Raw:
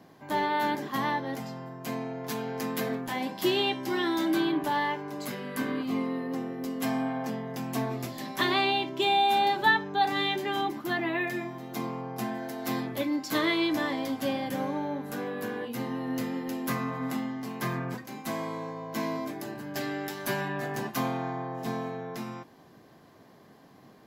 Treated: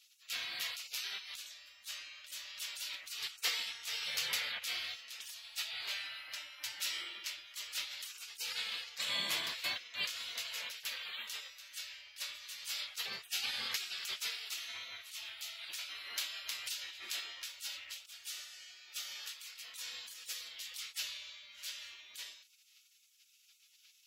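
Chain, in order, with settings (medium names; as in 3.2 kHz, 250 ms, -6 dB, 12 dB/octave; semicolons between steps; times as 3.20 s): spectral gate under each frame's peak -30 dB weak; frequency weighting D; trim +1 dB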